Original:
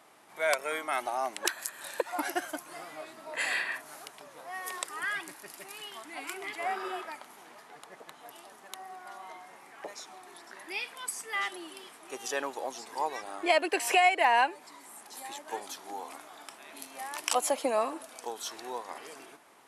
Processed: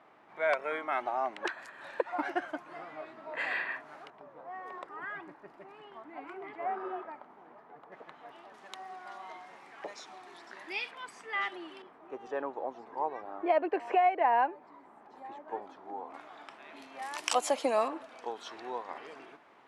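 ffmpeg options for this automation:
-af "asetnsamples=n=441:p=0,asendcmd='4.1 lowpass f 1100;7.92 lowpass f 2300;8.54 lowpass f 4800;10.91 lowpass f 2700;11.82 lowpass f 1100;16.14 lowpass f 2800;17.02 lowpass f 6900;17.88 lowpass f 2800',lowpass=2100"

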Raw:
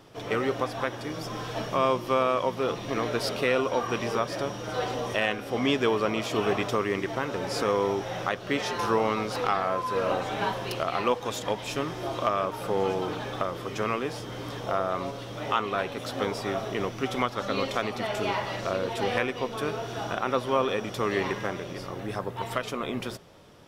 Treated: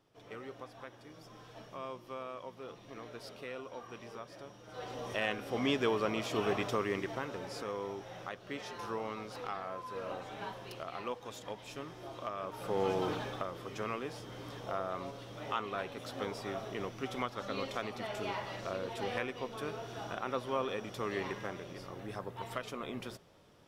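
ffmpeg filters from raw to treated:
-af "volume=1.68,afade=t=in:st=4.67:d=0.67:silence=0.237137,afade=t=out:st=6.92:d=0.71:silence=0.421697,afade=t=in:st=12.37:d=0.72:silence=0.281838,afade=t=out:st=13.09:d=0.34:silence=0.473151"

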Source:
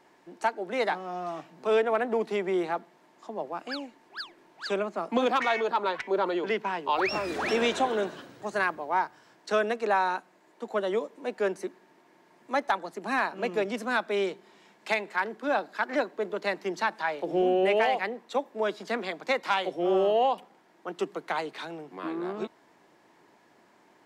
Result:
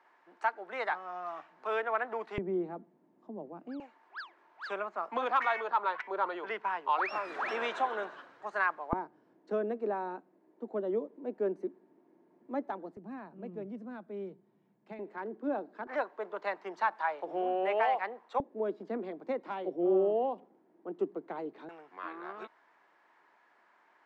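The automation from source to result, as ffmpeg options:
-af "asetnsamples=n=441:p=0,asendcmd='2.38 bandpass f 220;3.8 bandpass f 1200;8.93 bandpass f 290;12.97 bandpass f 120;14.99 bandpass f 310;15.87 bandpass f 1000;18.4 bandpass f 310;21.69 bandpass f 1400',bandpass=f=1300:t=q:w=1.4:csg=0"

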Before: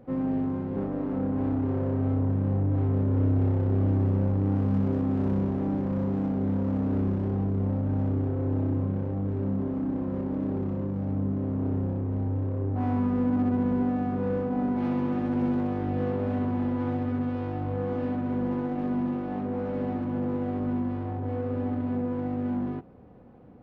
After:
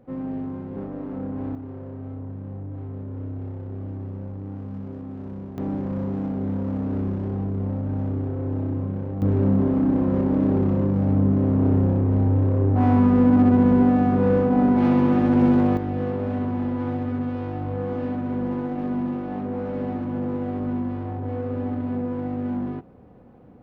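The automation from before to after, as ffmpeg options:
-af "asetnsamples=n=441:p=0,asendcmd='1.55 volume volume -9dB;5.58 volume volume 0.5dB;9.22 volume volume 9dB;15.77 volume volume 2dB',volume=0.75"

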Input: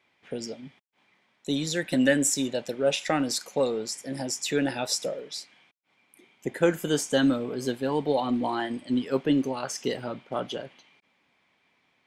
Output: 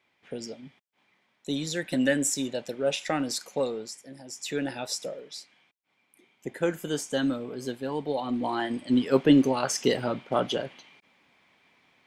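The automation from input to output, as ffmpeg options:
-af "volume=7.94,afade=t=out:st=3.59:d=0.64:silence=0.223872,afade=t=in:st=4.23:d=0.24:silence=0.281838,afade=t=in:st=8.22:d=1.05:silence=0.334965"

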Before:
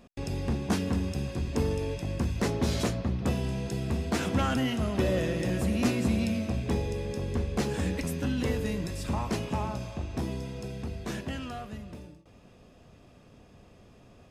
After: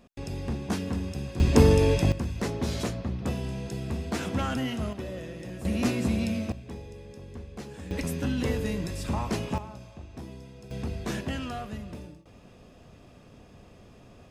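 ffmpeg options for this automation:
-af "asetnsamples=n=441:p=0,asendcmd='1.4 volume volume 10.5dB;2.12 volume volume -2dB;4.93 volume volume -10dB;5.65 volume volume 0dB;6.52 volume volume -11.5dB;7.91 volume volume 1dB;9.58 volume volume -9dB;10.71 volume volume 3dB',volume=0.794"

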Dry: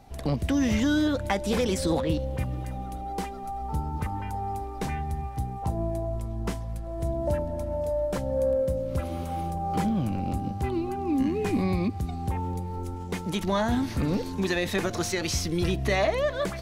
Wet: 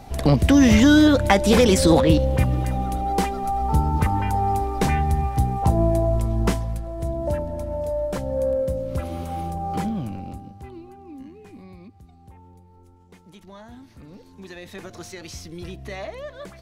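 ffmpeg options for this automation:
-af "volume=8.41,afade=t=out:st=6.43:d=0.51:silence=0.398107,afade=t=out:st=9.63:d=0.84:silence=0.251189,afade=t=out:st=10.47:d=0.98:silence=0.398107,afade=t=in:st=14.12:d=0.86:silence=0.375837"

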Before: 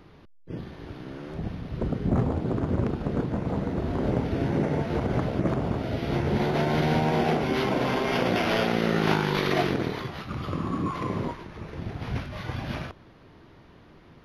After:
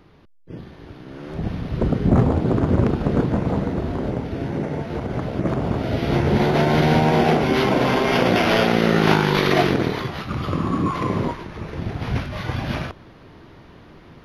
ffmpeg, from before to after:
-af "volume=5.62,afade=t=in:st=1.06:d=0.51:silence=0.398107,afade=t=out:st=3.31:d=0.84:silence=0.398107,afade=t=in:st=5.16:d=0.85:silence=0.446684"

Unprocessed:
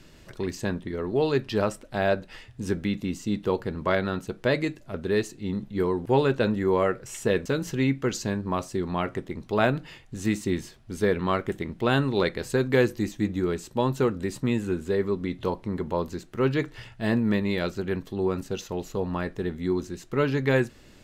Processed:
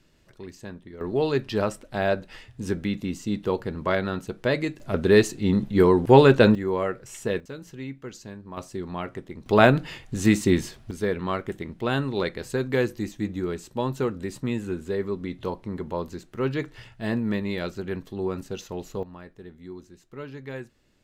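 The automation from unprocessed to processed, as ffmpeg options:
-af "asetnsamples=n=441:p=0,asendcmd='1.01 volume volume 0dB;4.8 volume volume 8dB;6.55 volume volume -3dB;7.4 volume volume -12dB;8.57 volume volume -4.5dB;9.46 volume volume 6.5dB;10.91 volume volume -2.5dB;19.03 volume volume -14dB',volume=0.299"

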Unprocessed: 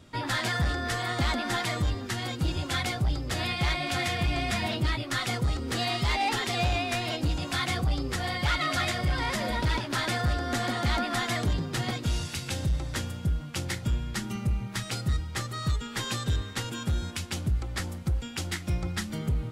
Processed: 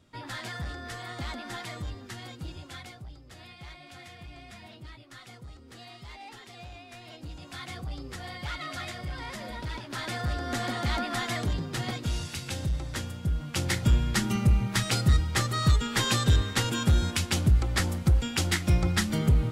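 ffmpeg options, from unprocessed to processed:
-af "volume=5.96,afade=t=out:st=2.15:d=0.97:silence=0.334965,afade=t=in:st=6.87:d=1.15:silence=0.334965,afade=t=in:st=9.76:d=0.74:silence=0.446684,afade=t=in:st=13.23:d=0.68:silence=0.398107"

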